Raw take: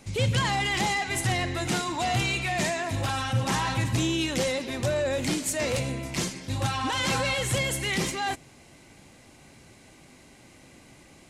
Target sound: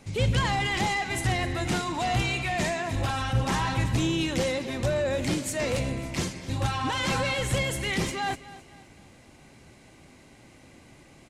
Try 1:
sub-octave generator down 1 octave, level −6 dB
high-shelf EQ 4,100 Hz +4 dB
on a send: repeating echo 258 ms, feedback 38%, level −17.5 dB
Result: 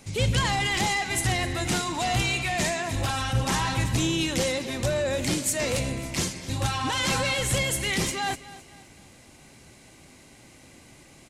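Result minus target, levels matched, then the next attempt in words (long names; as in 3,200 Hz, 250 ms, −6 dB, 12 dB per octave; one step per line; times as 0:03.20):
8,000 Hz band +5.5 dB
sub-octave generator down 1 octave, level −6 dB
high-shelf EQ 4,100 Hz −5 dB
on a send: repeating echo 258 ms, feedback 38%, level −17.5 dB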